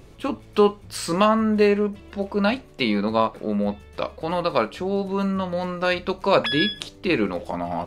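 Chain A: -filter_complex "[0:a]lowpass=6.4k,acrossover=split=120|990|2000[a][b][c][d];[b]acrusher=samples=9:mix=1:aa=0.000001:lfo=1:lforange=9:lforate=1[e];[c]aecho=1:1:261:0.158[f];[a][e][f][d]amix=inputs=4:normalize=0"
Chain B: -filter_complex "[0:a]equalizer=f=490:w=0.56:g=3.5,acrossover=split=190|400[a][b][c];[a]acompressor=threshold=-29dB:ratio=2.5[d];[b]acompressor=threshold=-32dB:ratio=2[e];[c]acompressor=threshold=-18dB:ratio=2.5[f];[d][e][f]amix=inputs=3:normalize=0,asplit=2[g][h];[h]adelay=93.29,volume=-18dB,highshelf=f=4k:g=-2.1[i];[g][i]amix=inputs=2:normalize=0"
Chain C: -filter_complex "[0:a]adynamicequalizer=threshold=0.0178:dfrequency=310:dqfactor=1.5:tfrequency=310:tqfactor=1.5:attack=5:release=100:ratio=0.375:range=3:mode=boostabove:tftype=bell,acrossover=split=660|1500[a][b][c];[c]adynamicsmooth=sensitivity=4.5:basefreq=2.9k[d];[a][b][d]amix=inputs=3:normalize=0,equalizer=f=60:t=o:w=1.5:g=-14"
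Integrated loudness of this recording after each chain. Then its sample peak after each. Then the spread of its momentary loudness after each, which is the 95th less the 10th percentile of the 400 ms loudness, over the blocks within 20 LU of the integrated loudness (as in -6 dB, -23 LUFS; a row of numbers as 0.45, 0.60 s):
-23.5, -23.5, -22.0 LUFS; -5.0, -6.0, -3.5 dBFS; 10, 7, 10 LU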